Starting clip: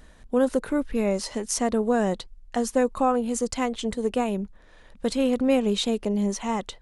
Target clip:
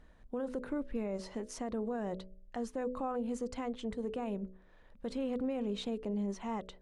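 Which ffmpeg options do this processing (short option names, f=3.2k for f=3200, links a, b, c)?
-af "lowpass=f=1.8k:p=1,bandreject=f=62.68:t=h:w=4,bandreject=f=125.36:t=h:w=4,bandreject=f=188.04:t=h:w=4,bandreject=f=250.72:t=h:w=4,bandreject=f=313.4:t=h:w=4,bandreject=f=376.08:t=h:w=4,bandreject=f=438.76:t=h:w=4,bandreject=f=501.44:t=h:w=4,bandreject=f=564.12:t=h:w=4,bandreject=f=626.8:t=h:w=4,alimiter=limit=-19.5dB:level=0:latency=1:release=33,volume=-8.5dB"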